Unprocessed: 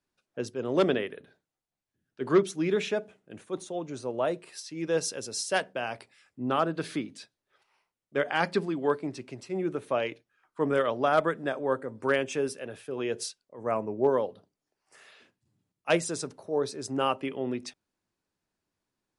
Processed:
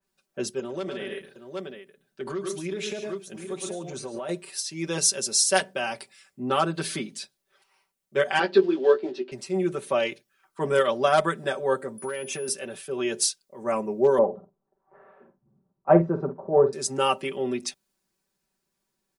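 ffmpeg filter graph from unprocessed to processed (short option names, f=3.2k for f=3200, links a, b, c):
-filter_complex "[0:a]asettb=1/sr,asplit=3[a][b][c];[a]atrim=end=0.594[d];[b]atrim=start=0.59:end=4.29,asetpts=PTS-STARTPTS,afade=t=in:d=0.004:c=qsin,afade=t=out:st=3.696:d=0.004:c=qsin,aecho=1:1:107|140|765:0.335|0.188|0.15,atrim=end_sample=163170,acompressor=threshold=-32dB:ratio=16:attack=3.2:release=140:knee=1:detection=peak[e];[c]atrim=start=4.286[f];[d][e]acrossfade=d=0.004:c1=hsin:c2=qsin[g];[g][f]acrossfade=d=0.004:c1=qsin:c2=hsin,asettb=1/sr,asplit=3[h][i][j];[h]atrim=end=8.394[k];[i]atrim=start=8.39:end=9.32,asetpts=PTS-STARTPTS,afade=t=in:d=0.004:c=qsin,afade=t=out:st=0.926:d=0.004:c=qsin,acrusher=bits=6:mode=log:mix=0:aa=0.000001,highpass=f=250:w=0.5412,highpass=f=250:w=1.3066,equalizer=f=360:t=q:w=4:g=8,equalizer=f=1.1k:t=q:w=4:g=-7,equalizer=f=2.2k:t=q:w=4:g=-9,lowpass=f=3.6k:w=0.5412,lowpass=f=3.6k:w=1.3066,asplit=2[l][m];[m]adelay=16,volume=-5.5dB[n];[l][n]amix=inputs=2:normalize=0,atrim=end_sample=41013[o];[j]atrim=start=9.316[p];[k][o]acrossfade=d=0.004:c1=hsin:c2=qsin[q];[q][p]acrossfade=d=0.004:c1=qsin:c2=hsin,asettb=1/sr,asplit=3[r][s][t];[r]atrim=end=11.984[u];[s]atrim=start=11.98:end=12.48,asetpts=PTS-STARTPTS,afade=t=in:d=0.004:c=qsin,afade=t=out:st=0.496:d=0.004:c=qsin,highshelf=f=5.2k:g=-9.5,acompressor=threshold=-31dB:ratio=12:attack=3.2:release=140:knee=1:detection=peak,aeval=exprs='val(0)+0.00447*sin(2*PI*9900*n/s)':c=same[v];[t]atrim=start=12.476[w];[u][v]acrossfade=d=0.004:c1=hsin:c2=qsin[x];[x][w]acrossfade=d=0.004:c1=qsin:c2=hsin,asettb=1/sr,asplit=3[y][z][aa];[y]atrim=end=14.184[ab];[z]atrim=start=14.18:end=16.73,asetpts=PTS-STARTPTS,afade=t=in:d=0.004:c=qsin,afade=t=out:st=2.546:d=0.004:c=qsin,lowpass=f=1.1k:w=0.5412,lowpass=f=1.1k:w=1.3066,acontrast=62,asplit=2[ac][ad];[ad]adelay=48,volume=-11dB[ae];[ac][ae]amix=inputs=2:normalize=0,atrim=end_sample=112455[af];[aa]atrim=start=16.726[ag];[ab][af]acrossfade=d=0.004:c1=hsin:c2=qsin[ah];[ah][ag]acrossfade=d=0.004:c1=qsin:c2=hsin,highshelf=f=7.1k:g=9.5,aecho=1:1:5.2:1,adynamicequalizer=threshold=0.00891:dfrequency=2800:dqfactor=0.7:tfrequency=2800:tqfactor=0.7:attack=5:release=100:ratio=0.375:range=2.5:mode=boostabove:tftype=highshelf"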